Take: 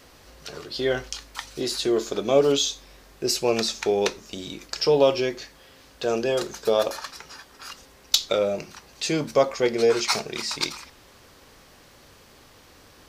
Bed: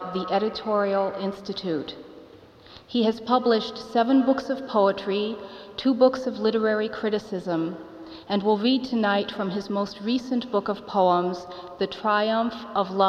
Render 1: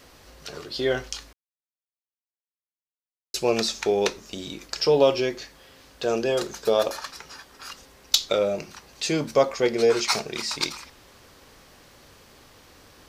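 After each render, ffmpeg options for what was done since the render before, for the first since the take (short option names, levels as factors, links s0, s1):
-filter_complex "[0:a]asplit=3[s0][s1][s2];[s0]atrim=end=1.33,asetpts=PTS-STARTPTS,afade=t=out:st=1.326:d=0.004:c=hsin[s3];[s1]atrim=start=1.33:end=3.34,asetpts=PTS-STARTPTS,volume=0[s4];[s2]atrim=start=3.34,asetpts=PTS-STARTPTS,afade=t=in:d=0.004:c=hsin[s5];[s3][s4][s5]concat=n=3:v=0:a=1"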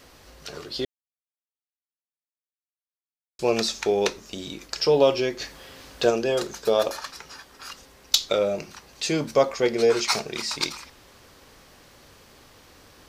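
-filter_complex "[0:a]asplit=3[s0][s1][s2];[s0]afade=t=out:st=5.39:d=0.02[s3];[s1]acontrast=57,afade=t=in:st=5.39:d=0.02,afade=t=out:st=6.09:d=0.02[s4];[s2]afade=t=in:st=6.09:d=0.02[s5];[s3][s4][s5]amix=inputs=3:normalize=0,asplit=3[s6][s7][s8];[s6]atrim=end=0.85,asetpts=PTS-STARTPTS,afade=t=out:st=0.846:d=0.004:c=hsin[s9];[s7]atrim=start=0.85:end=3.39,asetpts=PTS-STARTPTS,volume=0[s10];[s8]atrim=start=3.39,asetpts=PTS-STARTPTS,afade=t=in:d=0.004:c=hsin[s11];[s9][s10][s11]concat=n=3:v=0:a=1"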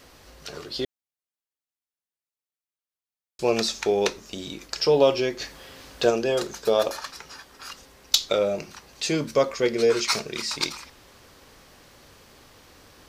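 -filter_complex "[0:a]asettb=1/sr,asplit=3[s0][s1][s2];[s0]atrim=end=9.154[s3];[s1]atrim=start=9.15:end=10.53,asetpts=PTS-STARTPTS,afade=t=in:d=0.004:c=qsin,afade=t=out:st=1.376:d=0.004:c=qsin,equalizer=f=770:t=o:w=0.4:g=-8.5[s4];[s2]atrim=start=10.526[s5];[s3][s4]acrossfade=d=0.004:c1=hsin:c2=qsin[s6];[s6][s5]acrossfade=d=0.004:c1=qsin:c2=hsin"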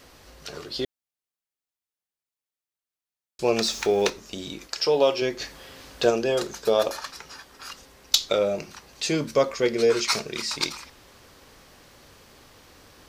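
-filter_complex "[0:a]asettb=1/sr,asplit=3[s0][s1][s2];[s0]atrim=end=3.624[s3];[s1]atrim=start=3.62:end=4.1,asetpts=PTS-STARTPTS,afade=t=in:d=0.004:c=qsin,afade=t=out:st=0.476:d=0.004:c=qsin,aeval=exprs='val(0)+0.5*0.0141*sgn(val(0))':c=same[s4];[s2]atrim=start=4.096[s5];[s3][s4]acrossfade=d=0.004:c1=hsin:c2=qsin[s6];[s6][s5]acrossfade=d=0.004:c1=qsin:c2=hsin,asettb=1/sr,asplit=3[s7][s8][s9];[s7]atrim=end=4.674[s10];[s8]atrim=start=4.67:end=5.22,asetpts=PTS-STARTPTS,afade=t=in:d=0.004:c=qsin,afade=t=out:st=0.546:d=0.004:c=qsin,lowshelf=f=220:g=-11.5[s11];[s9]atrim=start=5.216[s12];[s10][s11]acrossfade=d=0.004:c1=hsin:c2=qsin[s13];[s13][s12]acrossfade=d=0.004:c1=qsin:c2=hsin"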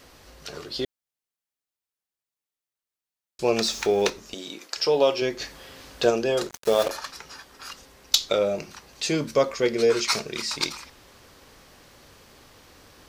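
-filter_complex "[0:a]asettb=1/sr,asplit=3[s0][s1][s2];[s0]atrim=end=4.344[s3];[s1]atrim=start=4.34:end=4.77,asetpts=PTS-STARTPTS,afade=t=in:d=0.004:c=qsin,afade=t=out:st=0.426:d=0.004:c=qsin,highpass=290[s4];[s2]atrim=start=4.766[s5];[s3][s4]acrossfade=d=0.004:c1=hsin:c2=qsin[s6];[s6][s5]acrossfade=d=0.004:c1=qsin:c2=hsin,asettb=1/sr,asplit=3[s7][s8][s9];[s7]atrim=end=6.494[s10];[s8]atrim=start=6.49:end=6.91,asetpts=PTS-STARTPTS,afade=t=in:d=0.004:c=qsin,afade=t=out:st=0.416:d=0.004:c=qsin,acrusher=bits=4:mix=0:aa=0.5[s11];[s9]atrim=start=6.906[s12];[s10][s11]acrossfade=d=0.004:c1=hsin:c2=qsin[s13];[s13][s12]acrossfade=d=0.004:c1=qsin:c2=hsin"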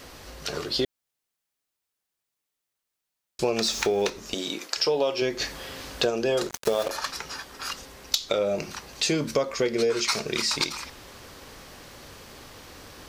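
-filter_complex "[0:a]asplit=2[s0][s1];[s1]alimiter=limit=0.188:level=0:latency=1:release=263,volume=1.06[s2];[s0][s2]amix=inputs=2:normalize=0,acompressor=threshold=0.0794:ratio=4"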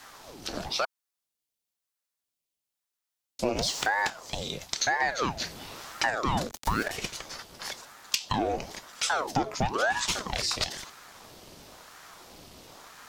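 -filter_complex "[0:a]acrossover=split=140|1900|4300[s0][s1][s2][s3];[s1]adynamicsmooth=sensitivity=5.5:basefreq=1000[s4];[s0][s4][s2][s3]amix=inputs=4:normalize=0,aeval=exprs='val(0)*sin(2*PI*720*n/s+720*0.85/1*sin(2*PI*1*n/s))':c=same"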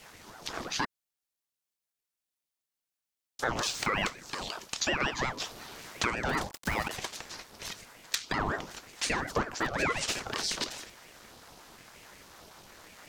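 -filter_complex "[0:a]acrossover=split=120|2900[s0][s1][s2];[s0]aeval=exprs='(mod(29.9*val(0)+1,2)-1)/29.9':c=same[s3];[s3][s1][s2]amix=inputs=3:normalize=0,aeval=exprs='val(0)*sin(2*PI*720*n/s+720*0.6/5.5*sin(2*PI*5.5*n/s))':c=same"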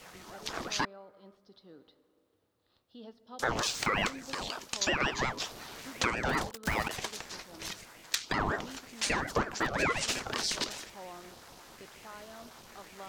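-filter_complex "[1:a]volume=0.0447[s0];[0:a][s0]amix=inputs=2:normalize=0"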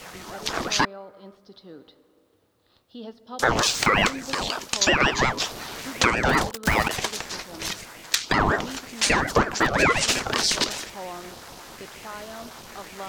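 -af "volume=3.16,alimiter=limit=0.794:level=0:latency=1"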